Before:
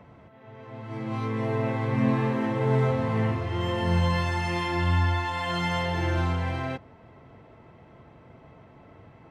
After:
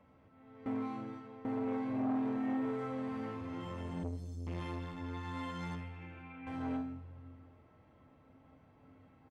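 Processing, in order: 2.6–3.41 low shelf 370 Hz -8 dB; 4.03–4.47 inverse Chebyshev band-stop 310–1900 Hz, stop band 60 dB; limiter -20 dBFS, peak gain reduction 8.5 dB; 5.75–6.47 ladder low-pass 2600 Hz, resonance 80%; resonator 88 Hz, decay 0.61 s, harmonics odd, mix 80%; frequency-shifting echo 0.159 s, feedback 59%, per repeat +90 Hz, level -22.5 dB; shoebox room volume 2900 m³, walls furnished, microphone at 2.2 m; 0.66–1.45 reverse; core saturation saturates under 480 Hz; gain -3 dB

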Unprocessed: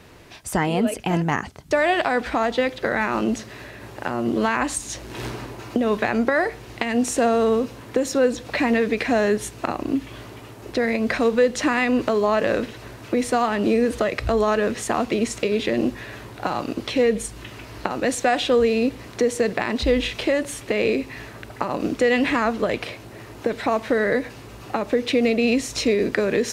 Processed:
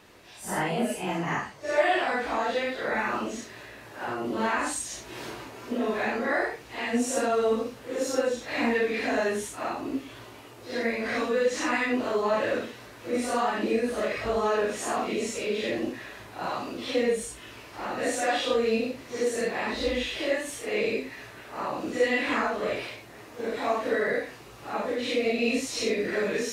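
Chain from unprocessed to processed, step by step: phase scrambler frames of 0.2 s; low shelf 240 Hz -9.5 dB; gain -4 dB

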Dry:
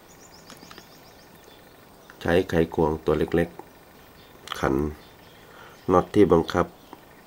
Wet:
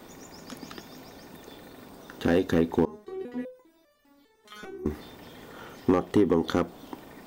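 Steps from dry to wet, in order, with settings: bell 340 Hz +3 dB 1.8 oct; compressor 8:1, threshold -19 dBFS, peak gain reduction 11 dB; small resonant body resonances 250/3600 Hz, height 7 dB, ringing for 45 ms; hard clip -13 dBFS, distortion -18 dB; 2.85–4.86 stepped resonator 5 Hz 210–590 Hz

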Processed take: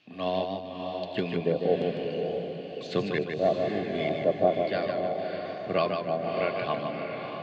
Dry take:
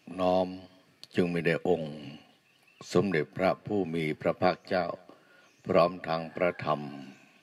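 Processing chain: 2.1–2.87 high shelf 4000 Hz +10.5 dB; LFO low-pass square 1.1 Hz 610–3600 Hz; diffused feedback echo 0.6 s, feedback 43%, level -5 dB; warbling echo 0.152 s, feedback 40%, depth 70 cents, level -5.5 dB; gain -3.5 dB

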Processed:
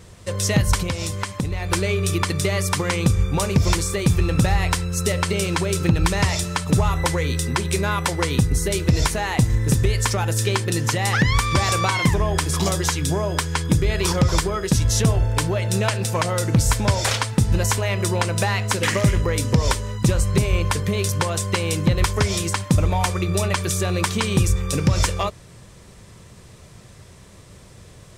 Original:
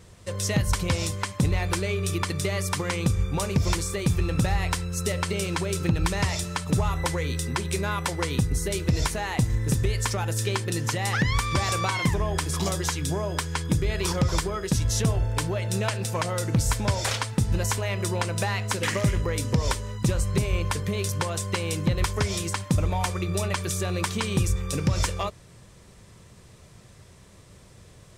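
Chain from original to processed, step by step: 0.82–1.72 compressor 6:1, threshold -27 dBFS, peak gain reduction 9 dB; gain +5.5 dB

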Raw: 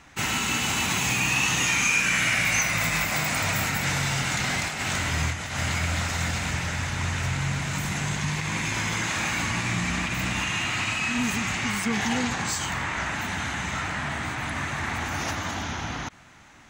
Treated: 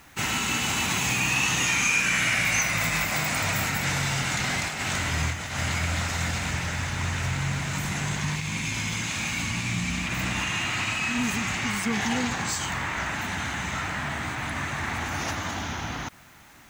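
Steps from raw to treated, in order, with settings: spectral gain 8.37–10.06, 300–2100 Hz -6 dB; in parallel at -8 dB: requantised 8-bit, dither triangular; on the sum: gain -3.5 dB

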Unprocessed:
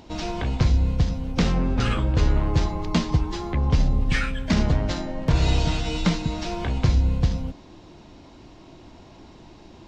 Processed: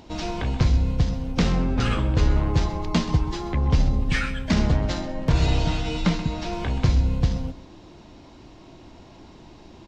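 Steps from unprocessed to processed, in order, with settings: 5.46–6.53 high shelf 6200 Hz -7.5 dB; echo 0.13 s -15 dB

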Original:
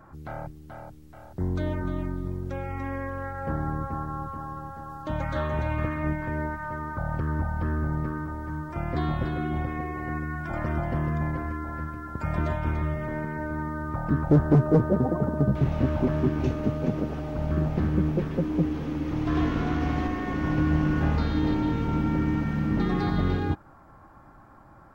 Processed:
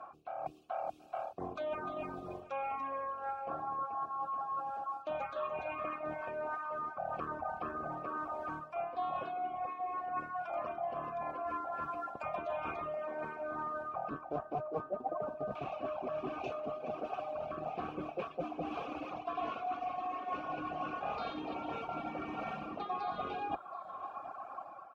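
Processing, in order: octaver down 2 oct, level -1 dB; vowel filter a; reverse; compressor 8:1, threshold -53 dBFS, peak gain reduction 21.5 dB; reverse; tilt +2 dB/oct; AGC gain up to 6.5 dB; reverb removal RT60 1.6 s; echo 0.728 s -19 dB; gain +14.5 dB

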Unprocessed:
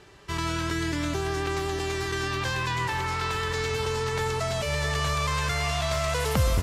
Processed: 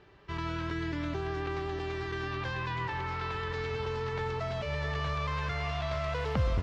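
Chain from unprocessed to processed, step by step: air absorption 230 m; gain -5 dB

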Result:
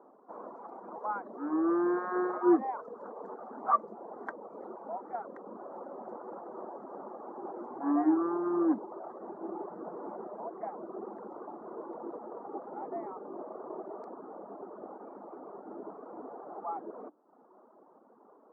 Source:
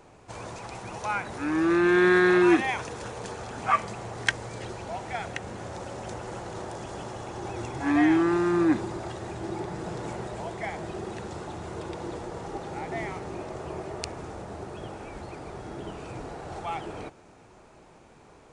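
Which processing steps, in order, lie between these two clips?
elliptic band-pass 230–1200 Hz, stop band 40 dB; notches 60/120/180/240/300/360 Hz; reverb removal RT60 0.78 s; gain -2 dB

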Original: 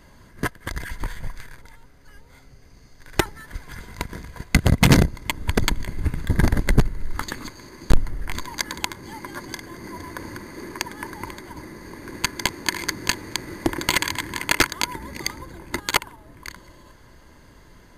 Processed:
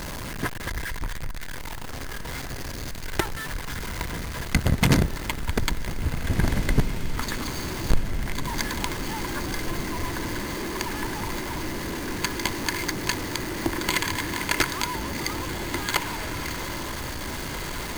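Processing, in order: zero-crossing step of -22 dBFS; diffused feedback echo 1.805 s, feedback 59%, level -9.5 dB; gain -6 dB

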